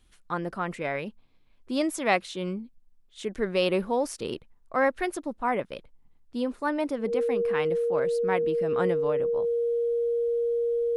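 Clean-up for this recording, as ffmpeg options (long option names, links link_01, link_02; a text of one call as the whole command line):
ffmpeg -i in.wav -af "bandreject=frequency=470:width=30" out.wav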